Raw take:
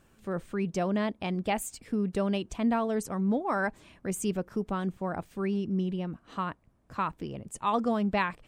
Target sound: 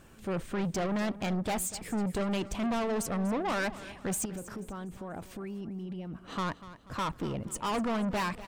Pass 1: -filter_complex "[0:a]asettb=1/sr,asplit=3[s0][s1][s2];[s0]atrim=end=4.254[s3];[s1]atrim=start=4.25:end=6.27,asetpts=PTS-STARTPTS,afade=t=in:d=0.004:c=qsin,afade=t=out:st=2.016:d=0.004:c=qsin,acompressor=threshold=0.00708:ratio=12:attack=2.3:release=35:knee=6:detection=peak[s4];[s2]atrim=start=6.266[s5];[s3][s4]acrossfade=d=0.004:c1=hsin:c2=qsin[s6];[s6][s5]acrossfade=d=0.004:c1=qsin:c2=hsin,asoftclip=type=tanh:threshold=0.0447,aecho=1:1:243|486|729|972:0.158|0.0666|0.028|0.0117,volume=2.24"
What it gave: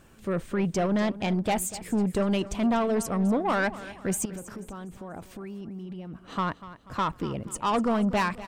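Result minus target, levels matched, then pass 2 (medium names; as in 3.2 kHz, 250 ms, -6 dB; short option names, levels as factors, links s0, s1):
saturation: distortion -6 dB
-filter_complex "[0:a]asettb=1/sr,asplit=3[s0][s1][s2];[s0]atrim=end=4.254[s3];[s1]atrim=start=4.25:end=6.27,asetpts=PTS-STARTPTS,afade=t=in:d=0.004:c=qsin,afade=t=out:st=2.016:d=0.004:c=qsin,acompressor=threshold=0.00708:ratio=12:attack=2.3:release=35:knee=6:detection=peak[s4];[s2]atrim=start=6.266[s5];[s3][s4]acrossfade=d=0.004:c1=hsin:c2=qsin[s6];[s6][s5]acrossfade=d=0.004:c1=qsin:c2=hsin,asoftclip=type=tanh:threshold=0.0168,aecho=1:1:243|486|729|972:0.158|0.0666|0.028|0.0117,volume=2.24"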